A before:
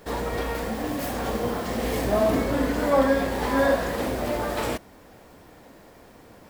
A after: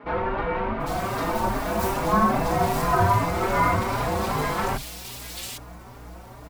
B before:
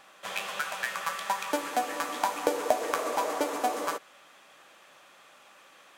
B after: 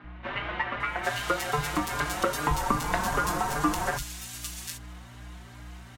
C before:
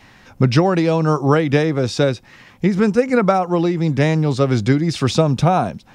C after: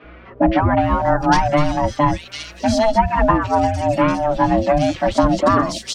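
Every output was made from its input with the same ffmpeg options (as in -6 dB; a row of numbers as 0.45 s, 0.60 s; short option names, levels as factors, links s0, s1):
-filter_complex "[0:a]aeval=exprs='val(0)*sin(2*PI*440*n/s)':c=same,aeval=exprs='val(0)+0.00316*(sin(2*PI*60*n/s)+sin(2*PI*2*60*n/s)/2+sin(2*PI*3*60*n/s)/3+sin(2*PI*4*60*n/s)/4+sin(2*PI*5*60*n/s)/5)':c=same,acrossover=split=160|2800[s0][s1][s2];[s0]adelay=40[s3];[s2]adelay=800[s4];[s3][s1][s4]amix=inputs=3:normalize=0,asplit=2[s5][s6];[s6]acompressor=threshold=0.0224:ratio=6,volume=0.794[s7];[s5][s7]amix=inputs=2:normalize=0,asplit=2[s8][s9];[s9]adelay=4.5,afreqshift=2.5[s10];[s8][s10]amix=inputs=2:normalize=1,volume=1.88"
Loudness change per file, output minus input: +1.0 LU, +1.5 LU, -0.5 LU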